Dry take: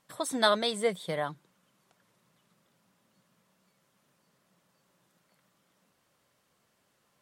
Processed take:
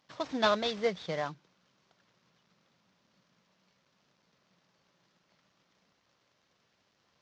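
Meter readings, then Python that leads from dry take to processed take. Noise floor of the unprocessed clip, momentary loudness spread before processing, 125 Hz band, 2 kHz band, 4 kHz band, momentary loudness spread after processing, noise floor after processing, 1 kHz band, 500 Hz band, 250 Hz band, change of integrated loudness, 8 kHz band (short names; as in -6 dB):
-73 dBFS, 9 LU, -1.5 dB, -2.5 dB, -4.0 dB, 9 LU, -74 dBFS, -2.0 dB, -2.0 dB, -1.5 dB, -2.5 dB, -12.0 dB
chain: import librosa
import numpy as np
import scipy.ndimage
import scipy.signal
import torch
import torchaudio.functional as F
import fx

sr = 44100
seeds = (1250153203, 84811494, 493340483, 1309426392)

y = fx.cvsd(x, sr, bps=32000)
y = scipy.signal.sosfilt(scipy.signal.butter(2, 50.0, 'highpass', fs=sr, output='sos'), y)
y = y * librosa.db_to_amplitude(-1.5)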